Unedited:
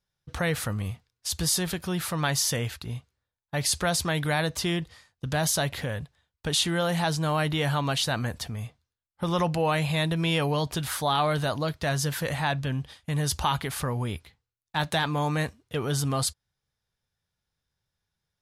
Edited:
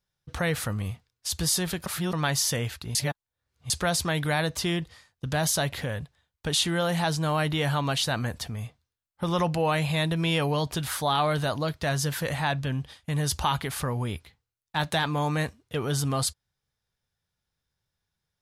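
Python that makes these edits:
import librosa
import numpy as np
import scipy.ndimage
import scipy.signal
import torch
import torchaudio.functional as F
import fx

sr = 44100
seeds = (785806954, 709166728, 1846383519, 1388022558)

y = fx.edit(x, sr, fx.reverse_span(start_s=1.86, length_s=0.27),
    fx.reverse_span(start_s=2.95, length_s=0.75), tone=tone)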